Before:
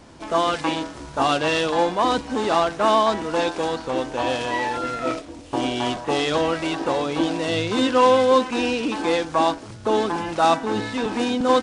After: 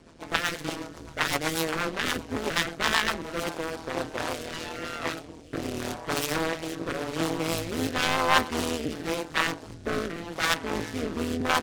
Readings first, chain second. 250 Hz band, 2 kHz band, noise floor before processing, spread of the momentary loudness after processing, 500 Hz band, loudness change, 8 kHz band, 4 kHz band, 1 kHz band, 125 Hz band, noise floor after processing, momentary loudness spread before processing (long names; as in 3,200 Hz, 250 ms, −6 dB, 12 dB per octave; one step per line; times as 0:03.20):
−8.0 dB, 0.0 dB, −39 dBFS, 10 LU, −11.0 dB, −7.0 dB, +1.5 dB, −3.0 dB, −9.5 dB, −2.5 dB, −45 dBFS, 8 LU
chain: phase distortion by the signal itself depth 0.95 ms
amplitude modulation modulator 160 Hz, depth 85%
rotating-speaker cabinet horn 8 Hz, later 0.9 Hz, at 0:02.90